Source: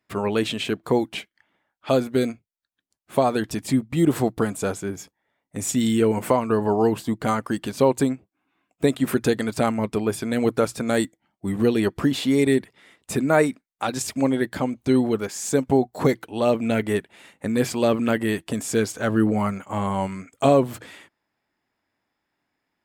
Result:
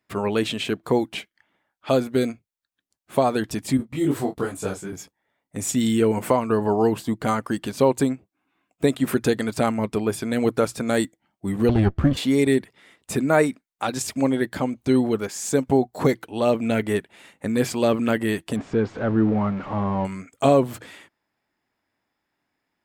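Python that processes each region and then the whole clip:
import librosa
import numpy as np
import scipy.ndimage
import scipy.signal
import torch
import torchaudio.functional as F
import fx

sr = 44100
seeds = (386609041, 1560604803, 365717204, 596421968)

y = fx.chain(x, sr, fx.doubler(ms=21.0, db=-8),
    fx.detune_double(cents=41), at=(3.77, 4.93))
y = fx.chain(y, sr, fx.lower_of_two(delay_ms=0.66),
    fx.lowpass(hz=1600.0, slope=6),
    fx.peak_eq(hz=75.0, db=14.0, octaves=1.4), at=(11.69, 12.17))
y = fx.chain(y, sr, fx.zero_step(step_db=-26.0),
    fx.spacing_loss(db_at_10k=42), at=(18.56, 20.05))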